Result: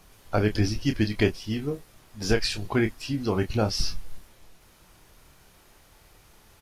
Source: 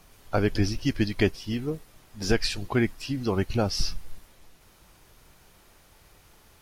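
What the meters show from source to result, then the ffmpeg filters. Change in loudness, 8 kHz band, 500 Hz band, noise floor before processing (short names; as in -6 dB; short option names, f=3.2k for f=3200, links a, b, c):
+0.5 dB, +0.5 dB, +0.5 dB, -57 dBFS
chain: -filter_complex "[0:a]asplit=2[a][b];[b]adelay=28,volume=-8dB[c];[a][c]amix=inputs=2:normalize=0,aresample=32000,aresample=44100"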